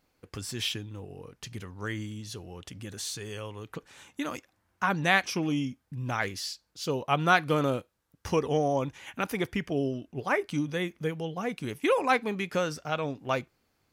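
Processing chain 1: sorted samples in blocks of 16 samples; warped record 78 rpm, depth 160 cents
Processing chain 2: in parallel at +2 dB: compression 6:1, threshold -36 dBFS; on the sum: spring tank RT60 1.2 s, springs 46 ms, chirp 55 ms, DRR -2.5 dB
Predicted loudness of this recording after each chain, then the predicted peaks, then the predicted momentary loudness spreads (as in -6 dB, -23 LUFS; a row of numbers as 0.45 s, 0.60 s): -29.5 LUFS, -23.5 LUFS; -5.5 dBFS, -1.5 dBFS; 18 LU, 13 LU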